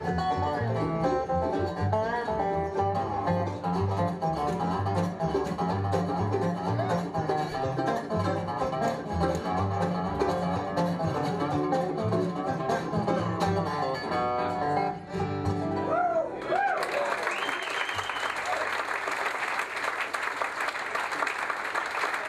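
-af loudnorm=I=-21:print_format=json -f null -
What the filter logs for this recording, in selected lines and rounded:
"input_i" : "-28.9",
"input_tp" : "-12.6",
"input_lra" : "1.3",
"input_thresh" : "-38.9",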